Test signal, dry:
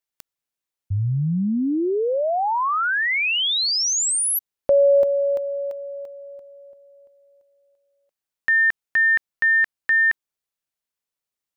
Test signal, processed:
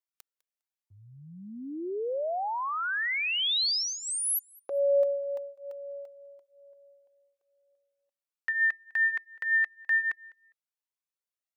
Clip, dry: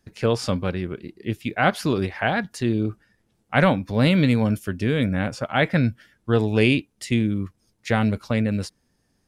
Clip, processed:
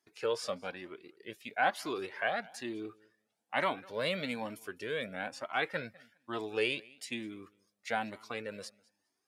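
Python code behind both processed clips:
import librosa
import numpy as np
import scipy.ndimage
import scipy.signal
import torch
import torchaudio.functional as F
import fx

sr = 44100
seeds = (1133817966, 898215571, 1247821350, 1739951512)

p1 = scipy.signal.sosfilt(scipy.signal.butter(2, 420.0, 'highpass', fs=sr, output='sos'), x)
p2 = p1 + fx.echo_feedback(p1, sr, ms=203, feedback_pct=17, wet_db=-24.0, dry=0)
p3 = fx.comb_cascade(p2, sr, direction='rising', hz=1.1)
y = p3 * librosa.db_to_amplitude(-5.0)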